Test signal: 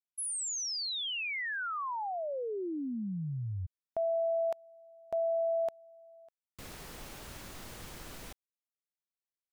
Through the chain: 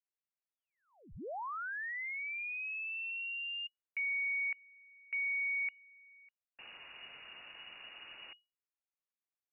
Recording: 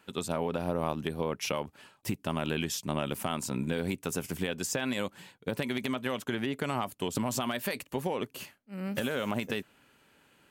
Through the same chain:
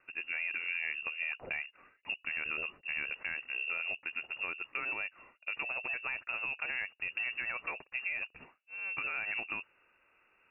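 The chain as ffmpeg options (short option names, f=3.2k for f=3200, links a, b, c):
-filter_complex "[0:a]asplit=2[a][b];[b]asoftclip=type=hard:threshold=-28.5dB,volume=-9dB[c];[a][c]amix=inputs=2:normalize=0,lowpass=f=2.5k:t=q:w=0.5098,lowpass=f=2.5k:t=q:w=0.6013,lowpass=f=2.5k:t=q:w=0.9,lowpass=f=2.5k:t=q:w=2.563,afreqshift=-2900,volume=-7dB"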